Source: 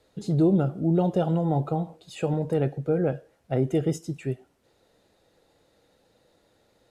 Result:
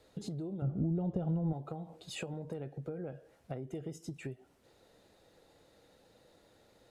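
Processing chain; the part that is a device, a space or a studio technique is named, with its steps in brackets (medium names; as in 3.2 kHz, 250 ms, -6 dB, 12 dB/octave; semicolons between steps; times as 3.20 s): serial compression, peaks first (compression 4:1, threshold -33 dBFS, peak gain reduction 14 dB; compression 3:1, threshold -39 dBFS, peak gain reduction 8 dB); 0.62–1.53 s: RIAA curve playback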